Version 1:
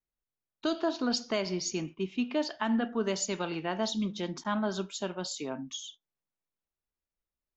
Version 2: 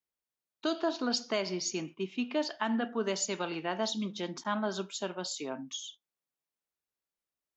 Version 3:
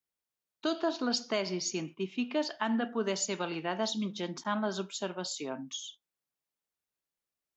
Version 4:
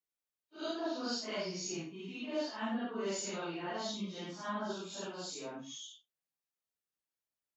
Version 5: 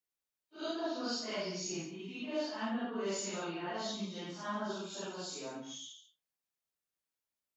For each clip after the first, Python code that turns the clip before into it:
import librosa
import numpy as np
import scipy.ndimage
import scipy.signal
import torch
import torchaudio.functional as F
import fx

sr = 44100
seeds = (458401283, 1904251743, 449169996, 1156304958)

y1 = fx.highpass(x, sr, hz=240.0, slope=6)
y2 = fx.peak_eq(y1, sr, hz=150.0, db=2.5, octaves=0.77)
y3 = fx.phase_scramble(y2, sr, seeds[0], window_ms=200)
y3 = y3 * 10.0 ** (-5.5 / 20.0)
y4 = y3 + 10.0 ** (-11.0 / 20.0) * np.pad(y3, (int(140 * sr / 1000.0), 0))[:len(y3)]